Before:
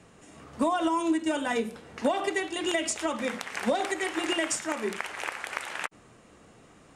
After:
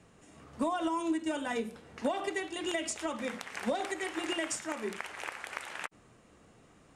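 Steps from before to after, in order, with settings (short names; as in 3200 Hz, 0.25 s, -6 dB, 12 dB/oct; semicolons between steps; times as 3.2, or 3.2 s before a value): low shelf 150 Hz +3.5 dB; gain -6 dB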